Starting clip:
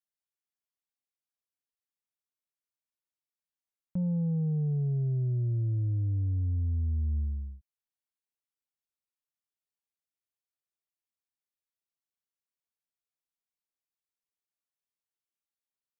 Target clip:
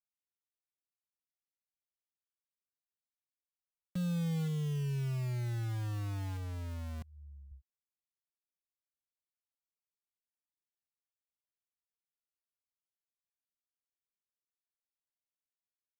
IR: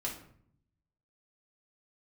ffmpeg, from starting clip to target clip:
-filter_complex "[0:a]asettb=1/sr,asplit=3[s0][s1][s2];[s0]atrim=end=7.014[s3];[s1]atrim=start=7.01:end=7.51,asetpts=PTS-STARTPTS,afade=t=in:d=0.004:c=qsin,afade=t=out:st=0.496:d=0.004:c=qsin,aecho=1:1:6.5:0.82,atrim=end_sample=22050[s4];[s2]atrim=start=7.506[s5];[s3][s4]acrossfade=d=0.004:c1=hsin:c2=qsin[s6];[s6][s5]acrossfade=d=0.004:c1=qsin:c2=hsin,acrossover=split=110[s7][s8];[s7]acompressor=threshold=0.00794:ratio=6[s9];[s8]acrusher=bits=6:mix=0:aa=0.000001[s10];[s9][s10]amix=inputs=2:normalize=0,volume=0.596"

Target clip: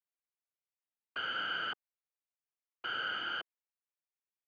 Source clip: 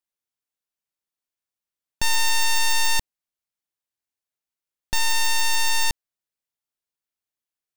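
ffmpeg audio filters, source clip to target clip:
-af "afftfilt=real='hypot(re,im)*cos(2*PI*random(0))':imag='hypot(re,im)*sin(2*PI*random(1))':win_size=512:overlap=0.75,asetrate=76440,aresample=44100,highpass=f=540:t=q:w=0.5412,highpass=f=540:t=q:w=1.307,lowpass=f=3000:t=q:w=0.5176,lowpass=f=3000:t=q:w=0.7071,lowpass=f=3000:t=q:w=1.932,afreqshift=-110"

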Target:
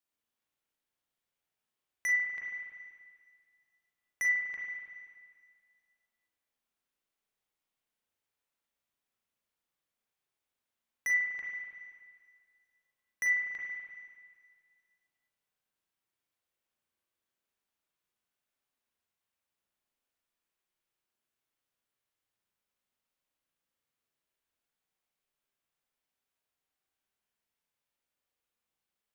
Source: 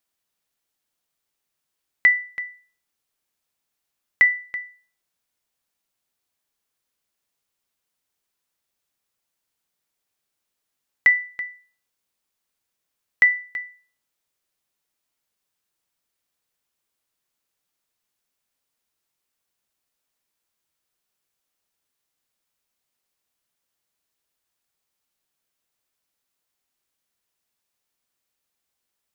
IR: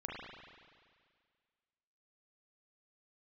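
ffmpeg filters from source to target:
-filter_complex "[0:a]asoftclip=type=hard:threshold=0.112[s0];[1:a]atrim=start_sample=2205[s1];[s0][s1]afir=irnorm=-1:irlink=0,volume=0.473"

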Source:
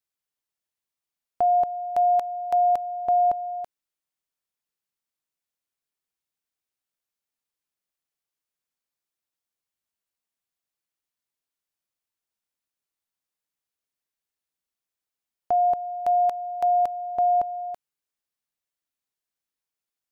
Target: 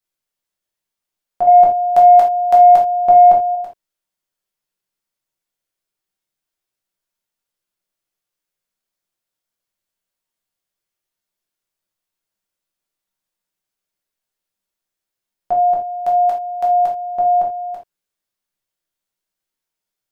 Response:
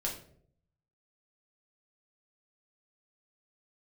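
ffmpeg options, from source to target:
-filter_complex "[0:a]asettb=1/sr,asplit=3[s0][s1][s2];[s0]atrim=end=1.474[s3];[s1]atrim=start=1.47:end=3.55,asetpts=PTS-STARTPTS,afade=t=in:d=0.004:c=qsin,afade=t=out:st=2.076:d=0.004:c=qsin,acontrast=75[s4];[s2]atrim=start=3.546[s5];[s3][s4]acrossfade=d=0.004:c1=hsin:c2=qsin[s6];[s6][s5]acrossfade=d=0.004:c1=qsin:c2=hsin[s7];[1:a]atrim=start_sample=2205,atrim=end_sample=3969[s8];[s7][s8]afir=irnorm=-1:irlink=0,volume=1.41"

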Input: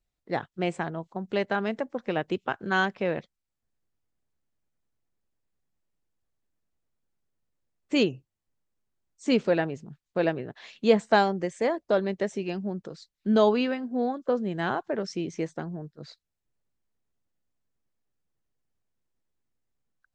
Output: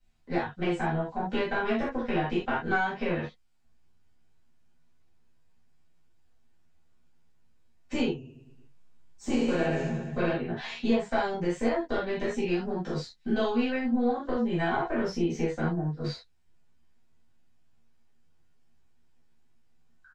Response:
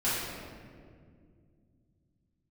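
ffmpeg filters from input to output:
-filter_complex "[0:a]asplit=2[s0][s1];[s1]adelay=12,volume=0.794[s2];[s0][s2]amix=inputs=2:normalize=0,acompressor=threshold=0.0224:ratio=4,aemphasis=mode=production:type=75fm,asettb=1/sr,asplit=3[s3][s4][s5];[s3]atrim=end=8.104[s6];[s4]atrim=start=8.1:end=10.33,asetpts=PTS-STARTPTS,afade=t=in:d=0.004:c=qsin,afade=t=out:st=2.226:d=0.004:c=qsin,aecho=1:1:70|150.5|243.1|349.5|472:0.631|0.398|0.251|0.158|0.1,atrim=end_sample=98343[s7];[s5]atrim=start=10.326[s8];[s6][s7]acrossfade=d=0.004:c1=hsin:c2=qsin[s9];[s9][s8]acrossfade=d=0.004:c1=qsin:c2=hsin,acrossover=split=280|1200[s10][s11][s12];[s10]acompressor=threshold=0.00631:ratio=4[s13];[s11]acompressor=threshold=0.0178:ratio=4[s14];[s12]acompressor=threshold=0.00794:ratio=4[s15];[s13][s14][s15]amix=inputs=3:normalize=0,lowpass=6900,aeval=exprs='0.0891*(cos(1*acos(clip(val(0)/0.0891,-1,1)))-cos(1*PI/2))+0.00794*(cos(4*acos(clip(val(0)/0.0891,-1,1)))-cos(4*PI/2))':c=same,bass=f=250:g=2,treble=f=4000:g=-10[s16];[1:a]atrim=start_sample=2205,atrim=end_sample=3969[s17];[s16][s17]afir=irnorm=-1:irlink=0,volume=1.19"

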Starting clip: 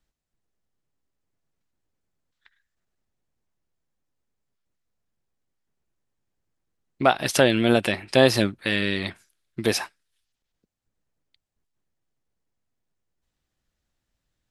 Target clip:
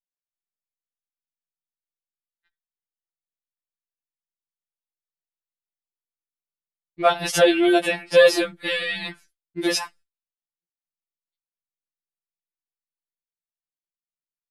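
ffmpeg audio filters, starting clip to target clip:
-af "agate=range=0.0224:threshold=0.00447:ratio=3:detection=peak,afftfilt=real='re*2.83*eq(mod(b,8),0)':imag='im*2.83*eq(mod(b,8),0)':win_size=2048:overlap=0.75,volume=1.41"

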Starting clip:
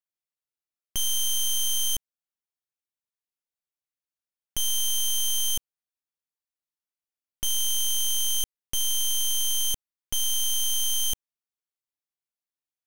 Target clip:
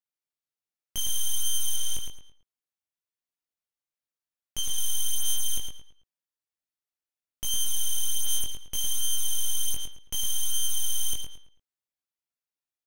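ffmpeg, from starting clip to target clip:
-filter_complex "[0:a]asplit=2[s0][s1];[s1]adelay=110,lowpass=f=4500:p=1,volume=0.631,asplit=2[s2][s3];[s3]adelay=110,lowpass=f=4500:p=1,volume=0.35,asplit=2[s4][s5];[s5]adelay=110,lowpass=f=4500:p=1,volume=0.35,asplit=2[s6][s7];[s7]adelay=110,lowpass=f=4500:p=1,volume=0.35[s8];[s0][s2][s4][s6][s8]amix=inputs=5:normalize=0,flanger=delay=18.5:depth=2.9:speed=0.66,asettb=1/sr,asplit=3[s9][s10][s11];[s9]atrim=end=1.764[s12];[s10]atrim=start=1.76:end=4.78,asetpts=PTS-STARTPTS,afade=t=in:d=0.004:c=qsin,afade=t=out:st=3.016:d=0.004:c=qsin,acrossover=split=9800[s13][s14];[s14]acompressor=threshold=0.01:ratio=4:attack=1:release=60[s15];[s13][s15]amix=inputs=2:normalize=0[s16];[s11]atrim=start=4.776[s17];[s12][s16]acrossfade=d=0.004:c1=hsin:c2=qsin[s18];[s18][s17]acrossfade=d=0.004:c1=qsin:c2=hsin"

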